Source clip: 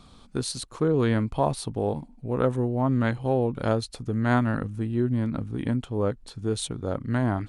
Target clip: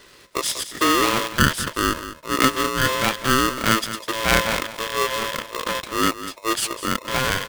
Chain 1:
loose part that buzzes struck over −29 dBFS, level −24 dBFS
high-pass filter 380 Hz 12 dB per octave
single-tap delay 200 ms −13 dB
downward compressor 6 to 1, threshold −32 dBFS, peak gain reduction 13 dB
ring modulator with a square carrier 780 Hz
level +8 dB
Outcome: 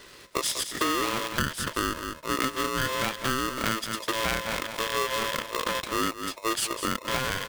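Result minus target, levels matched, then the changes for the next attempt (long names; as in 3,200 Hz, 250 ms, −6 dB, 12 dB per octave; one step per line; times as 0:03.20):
downward compressor: peak gain reduction +13 dB
remove: downward compressor 6 to 1, threshold −32 dBFS, peak gain reduction 13 dB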